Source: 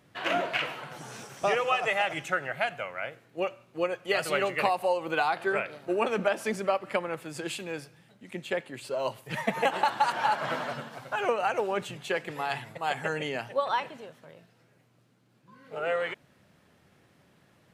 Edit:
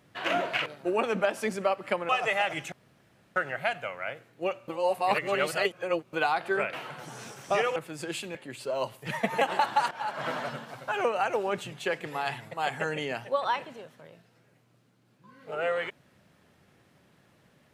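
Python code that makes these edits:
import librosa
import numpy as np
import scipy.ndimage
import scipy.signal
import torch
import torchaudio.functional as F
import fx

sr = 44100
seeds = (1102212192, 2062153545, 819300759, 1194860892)

y = fx.edit(x, sr, fx.swap(start_s=0.66, length_s=1.03, other_s=5.69, other_length_s=1.43),
    fx.insert_room_tone(at_s=2.32, length_s=0.64),
    fx.reverse_span(start_s=3.64, length_s=1.45),
    fx.cut(start_s=7.71, length_s=0.88),
    fx.fade_in_from(start_s=10.15, length_s=0.43, floor_db=-16.0), tone=tone)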